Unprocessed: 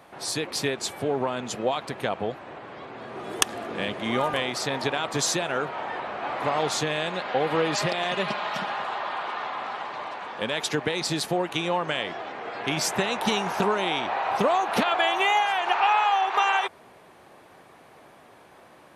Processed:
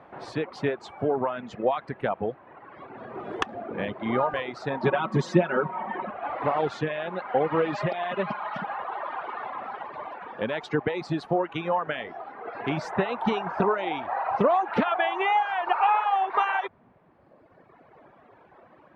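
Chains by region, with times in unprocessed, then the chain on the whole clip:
0:04.83–0:06.11: parametric band 220 Hz +11 dB 1.1 octaves + notch filter 750 Hz, Q 18 + comb filter 5.4 ms, depth 71%
whole clip: reverb reduction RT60 1.9 s; low-pass filter 1,700 Hz 12 dB per octave; level +2 dB

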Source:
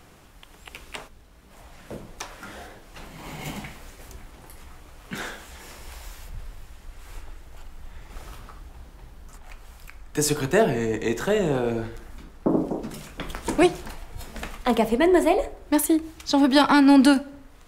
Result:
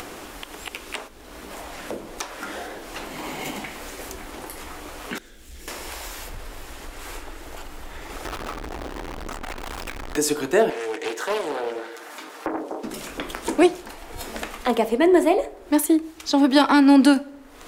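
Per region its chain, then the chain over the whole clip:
0:05.18–0:05.68: mu-law and A-law mismatch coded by mu + guitar amp tone stack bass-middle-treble 10-0-1
0:08.25–0:10.17: low-pass filter 2,200 Hz 6 dB per octave + power curve on the samples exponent 0.35
0:10.70–0:12.84: high-pass filter 560 Hz + comb filter 6.6 ms, depth 32% + highs frequency-modulated by the lows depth 0.62 ms
whole clip: low shelf with overshoot 210 Hz −10 dB, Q 1.5; upward compression, threshold −24 dBFS

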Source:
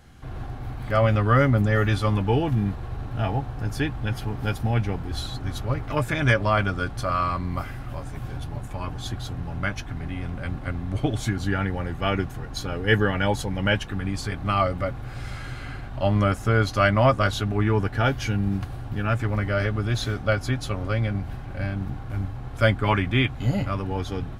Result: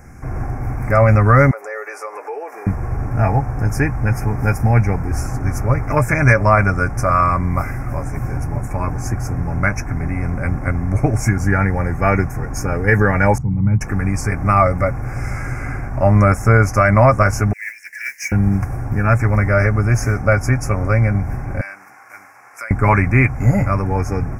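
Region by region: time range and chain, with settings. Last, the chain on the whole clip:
0:01.51–0:02.67: elliptic high-pass filter 430 Hz, stop band 60 dB + downward compressor 3 to 1, threshold −38 dBFS
0:13.38–0:13.81: resonant band-pass 140 Hz, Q 1.4 + comb filter 0.9 ms, depth 68%
0:17.53–0:18.32: Butterworth high-pass 1,700 Hz 96 dB per octave + noise that follows the level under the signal 21 dB
0:21.61–0:22.71: high-pass filter 1,400 Hz + downward compressor, threshold −35 dBFS
whole clip: elliptic band-stop filter 2,300–5,400 Hz, stop band 50 dB; dynamic equaliser 310 Hz, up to −5 dB, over −35 dBFS, Q 1.3; boost into a limiter +11.5 dB; level −1 dB

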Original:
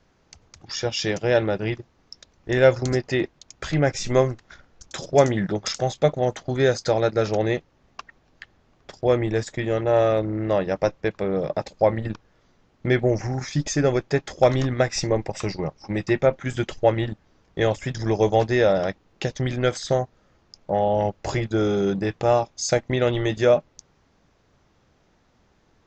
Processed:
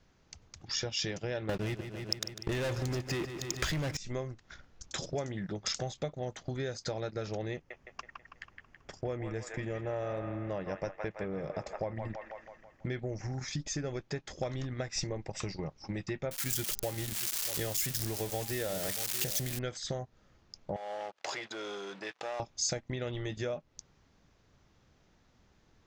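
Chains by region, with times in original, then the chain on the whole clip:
0:01.49–0:03.97: leveller curve on the samples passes 5 + repeating echo 149 ms, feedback 53%, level −14 dB
0:07.54–0:12.86: parametric band 3,900 Hz −9 dB 0.47 octaves + delay with a band-pass on its return 163 ms, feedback 50%, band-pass 1,400 Hz, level −4 dB
0:16.31–0:19.59: spike at every zero crossing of −12.5 dBFS + hum removal 201.3 Hz, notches 7 + single-tap delay 635 ms −17.5 dB
0:20.76–0:22.40: downward compressor 4 to 1, threshold −35 dBFS + leveller curve on the samples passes 3 + band-pass filter 680–6,400 Hz
whole clip: low-shelf EQ 320 Hz +8.5 dB; downward compressor 6 to 1, threshold −24 dBFS; tilt shelving filter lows −4 dB, about 1,200 Hz; level −6.5 dB

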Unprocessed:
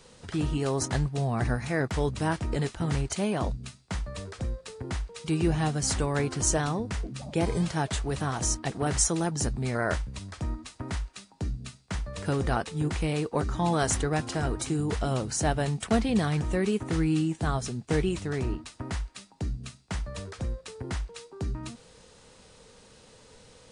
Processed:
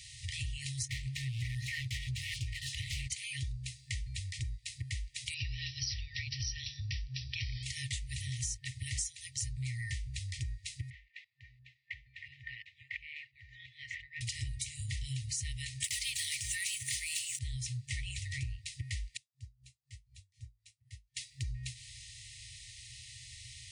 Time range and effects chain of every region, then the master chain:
0:00.89–0:03.08: mid-hump overdrive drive 29 dB, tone 1,200 Hz, clips at −14 dBFS + notch on a step sequencer 7.6 Hz 910–2,200 Hz
0:05.34–0:07.63: linear-phase brick-wall low-pass 5,900 Hz + high-shelf EQ 4,100 Hz +6.5 dB + notch filter 2,100 Hz, Q 11
0:10.90–0:14.21: low-pass filter 2,800 Hz + auto-filter band-pass saw up 2.9 Hz 790–2,100 Hz
0:15.84–0:17.39: RIAA equalisation recording + leveller curve on the samples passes 3
0:19.17–0:21.17: guitar amp tone stack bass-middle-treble 6-0-2 + tuned comb filter 110 Hz, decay 0.26 s, mix 70% + tremolo with a sine in dB 4 Hz, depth 23 dB
whole clip: high-pass filter 58 Hz; brick-wall band-stop 130–1,800 Hz; downward compressor 5 to 1, threshold −44 dBFS; level +7.5 dB

